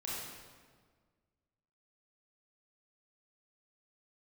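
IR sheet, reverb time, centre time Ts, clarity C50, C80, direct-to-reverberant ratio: 1.6 s, 106 ms, −3.0 dB, 0.0 dB, −7.0 dB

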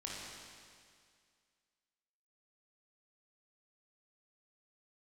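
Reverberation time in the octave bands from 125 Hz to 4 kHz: 2.0, 2.1, 2.1, 2.1, 2.1, 2.1 seconds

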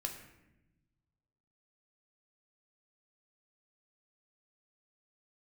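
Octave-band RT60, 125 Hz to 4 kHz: 2.0, 1.5, 1.1, 0.80, 0.90, 0.65 seconds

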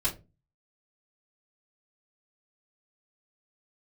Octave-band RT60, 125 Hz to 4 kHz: 0.55, 0.40, 0.30, 0.20, 0.20, 0.15 seconds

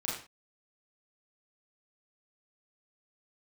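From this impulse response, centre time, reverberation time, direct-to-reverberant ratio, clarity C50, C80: 46 ms, non-exponential decay, −6.5 dB, 3.0 dB, 7.5 dB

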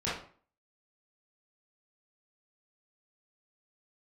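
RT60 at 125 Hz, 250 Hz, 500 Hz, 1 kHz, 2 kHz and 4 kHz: 0.50, 0.50, 0.45, 0.45, 0.40, 0.35 seconds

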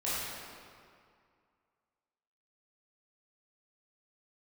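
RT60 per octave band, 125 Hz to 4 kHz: 2.2, 2.2, 2.1, 2.2, 1.9, 1.5 seconds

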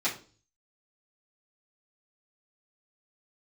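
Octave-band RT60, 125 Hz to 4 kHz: 0.70, 0.50, 0.45, 0.35, 0.30, 0.35 seconds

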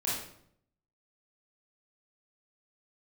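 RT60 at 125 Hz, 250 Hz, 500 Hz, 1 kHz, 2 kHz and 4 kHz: 0.90, 0.85, 0.70, 0.60, 0.55, 0.50 seconds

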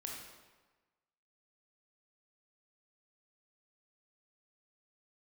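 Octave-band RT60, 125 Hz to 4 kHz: 1.2, 1.2, 1.2, 1.3, 1.1, 0.95 seconds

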